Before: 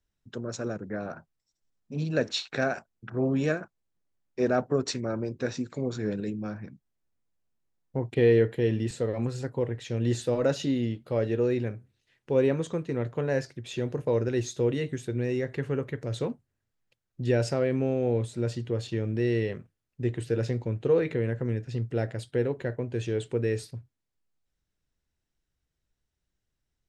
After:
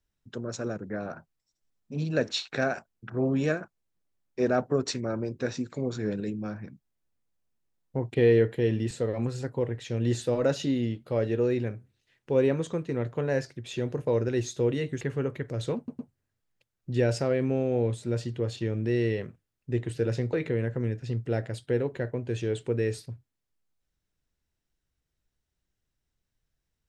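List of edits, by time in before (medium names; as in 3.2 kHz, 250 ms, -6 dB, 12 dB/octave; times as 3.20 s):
15.01–15.54 s: delete
16.30 s: stutter 0.11 s, 3 plays
20.64–20.98 s: delete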